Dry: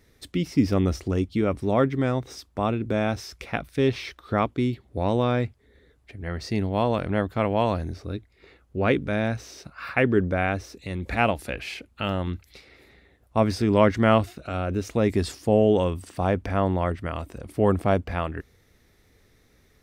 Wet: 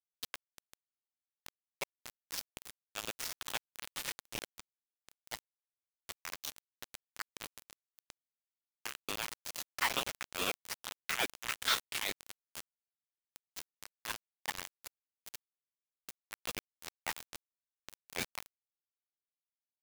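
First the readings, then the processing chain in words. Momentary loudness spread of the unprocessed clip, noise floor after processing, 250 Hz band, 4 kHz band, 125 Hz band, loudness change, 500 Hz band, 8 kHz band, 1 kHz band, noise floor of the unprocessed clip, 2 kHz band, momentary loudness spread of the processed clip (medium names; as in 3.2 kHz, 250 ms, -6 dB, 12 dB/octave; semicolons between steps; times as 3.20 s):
13 LU, under -85 dBFS, -30.5 dB, -2.0 dB, -34.0 dB, -14.5 dB, -27.0 dB, +2.5 dB, -17.0 dB, -61 dBFS, -9.0 dB, 19 LU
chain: treble shelf 5.1 kHz -4.5 dB; rotary cabinet horn 8 Hz; compression 16:1, threshold -34 dBFS, peak gain reduction 21 dB; added noise pink -55 dBFS; level held to a coarse grid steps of 10 dB; chorus voices 6, 0.2 Hz, delay 11 ms, depth 4 ms; Chebyshev high-pass 1.3 kHz, order 4; delay 242 ms -9 dB; bit crusher 8-bit; ring modulator with a swept carrier 690 Hz, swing 65%, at 2.3 Hz; trim +18 dB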